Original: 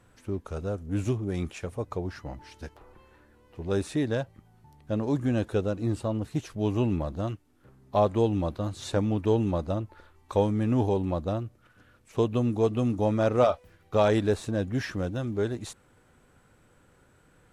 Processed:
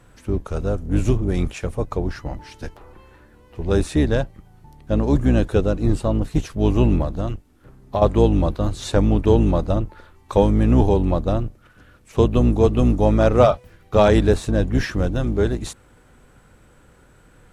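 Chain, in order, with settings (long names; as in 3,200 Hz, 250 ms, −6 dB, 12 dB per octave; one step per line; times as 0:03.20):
sub-octave generator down 2 octaves, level 0 dB
0:07.03–0:08.02: downward compressor 6 to 1, threshold −27 dBFS, peak gain reduction 9.5 dB
level +7.5 dB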